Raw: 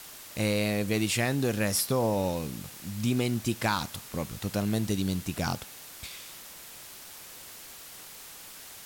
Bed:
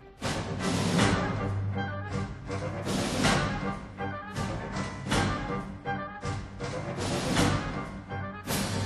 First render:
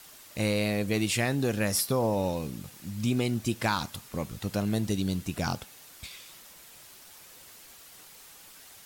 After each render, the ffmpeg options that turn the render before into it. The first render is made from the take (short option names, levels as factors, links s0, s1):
-af "afftdn=nr=6:nf=-47"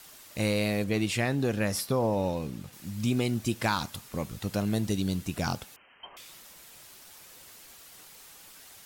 -filter_complex "[0:a]asettb=1/sr,asplit=3[s0][s1][s2];[s0]atrim=end=0.844[s3];[s1]atrim=start=0.84:end=2.73,asetpts=PTS-STARTPTS,afade=t=in:d=0.004:c=qsin,afade=t=out:st=1.886:d=0.004:c=qsin,highshelf=f=5100:g=-7.5[s4];[s2]atrim=start=2.726[s5];[s3][s4]acrossfade=d=0.004:c1=hsin:c2=qsin[s6];[s6][s5]acrossfade=d=0.004:c1=qsin:c2=hsin,asettb=1/sr,asplit=3[s7][s8][s9];[s7]atrim=end=5.764[s10];[s8]atrim=start=5.76:end=6.17,asetpts=PTS-STARTPTS,afade=t=in:d=0.004:c=qsin,afade=t=out:st=0.406:d=0.004:c=qsin,lowpass=f=2700:t=q:w=0.5098,lowpass=f=2700:t=q:w=0.6013,lowpass=f=2700:t=q:w=0.9,lowpass=f=2700:t=q:w=2.563,afreqshift=-3200[s11];[s9]atrim=start=6.166[s12];[s10][s11]acrossfade=d=0.004:c1=hsin:c2=qsin[s13];[s13][s12]acrossfade=d=0.004:c1=qsin:c2=hsin"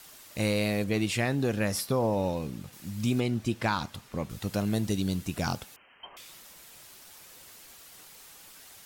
-filter_complex "[0:a]asettb=1/sr,asplit=3[s0][s1][s2];[s0]atrim=end=3.204[s3];[s1]atrim=start=3.2:end=4.3,asetpts=PTS-STARTPTS,afade=t=in:d=0.004:c=qsin,afade=t=out:st=1.096:d=0.004:c=qsin,equalizer=f=14000:t=o:w=1.7:g=-10.5[s4];[s2]atrim=start=4.296[s5];[s3][s4]acrossfade=d=0.004:c1=hsin:c2=qsin[s6];[s6][s5]acrossfade=d=0.004:c1=qsin:c2=hsin"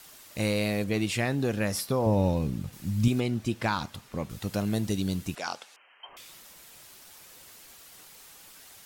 -filter_complex "[0:a]asettb=1/sr,asplit=3[s0][s1][s2];[s0]atrim=end=2.064[s3];[s1]atrim=start=2.06:end=3.08,asetpts=PTS-STARTPTS,afade=t=in:d=0.004:c=qsin,afade=t=out:st=1.016:d=0.004:c=qsin,lowshelf=f=190:g=12[s4];[s2]atrim=start=3.076[s5];[s3][s4]acrossfade=d=0.004:c1=hsin:c2=qsin[s6];[s6][s5]acrossfade=d=0.004:c1=qsin:c2=hsin,asettb=1/sr,asplit=3[s7][s8][s9];[s7]atrim=end=5.354[s10];[s8]atrim=start=5.35:end=6.09,asetpts=PTS-STARTPTS,afade=t=in:d=0.004:c=qsin,afade=t=out:st=0.736:d=0.004:c=qsin,highpass=560,lowpass=7100[s11];[s9]atrim=start=6.086[s12];[s10][s11]acrossfade=d=0.004:c1=hsin:c2=qsin[s13];[s13][s12]acrossfade=d=0.004:c1=qsin:c2=hsin"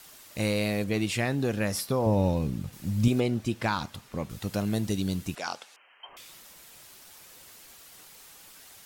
-filter_complex "[0:a]asettb=1/sr,asplit=3[s0][s1][s2];[s0]atrim=end=2.834[s3];[s1]atrim=start=2.83:end=3.41,asetpts=PTS-STARTPTS,afade=t=in:d=0.004:c=qsin,afade=t=out:st=0.576:d=0.004:c=qsin,equalizer=f=530:w=1.3:g=6[s4];[s2]atrim=start=3.406[s5];[s3][s4]acrossfade=d=0.004:c1=hsin:c2=qsin[s6];[s6][s5]acrossfade=d=0.004:c1=qsin:c2=hsin"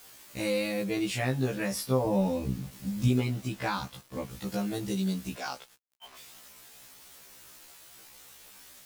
-af "acrusher=bits=7:mix=0:aa=0.000001,afftfilt=real='re*1.73*eq(mod(b,3),0)':imag='im*1.73*eq(mod(b,3),0)':win_size=2048:overlap=0.75"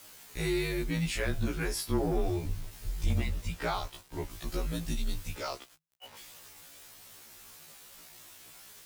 -af "asoftclip=type=tanh:threshold=0.1,afreqshift=-160"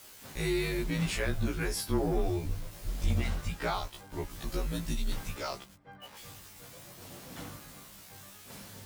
-filter_complex "[1:a]volume=0.106[s0];[0:a][s0]amix=inputs=2:normalize=0"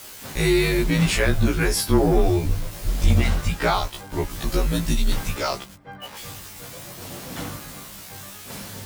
-af "volume=3.76"